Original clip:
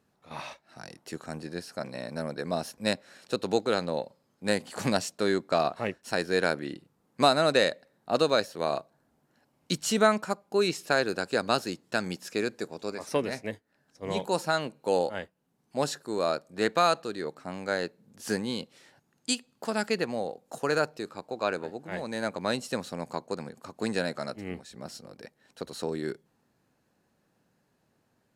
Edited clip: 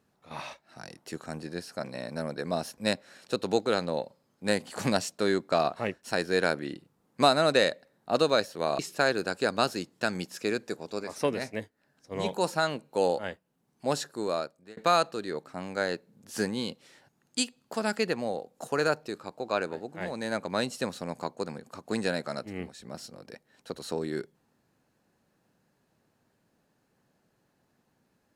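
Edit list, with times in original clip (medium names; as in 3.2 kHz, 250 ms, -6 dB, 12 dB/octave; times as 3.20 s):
8.79–10.70 s: delete
16.10–16.68 s: fade out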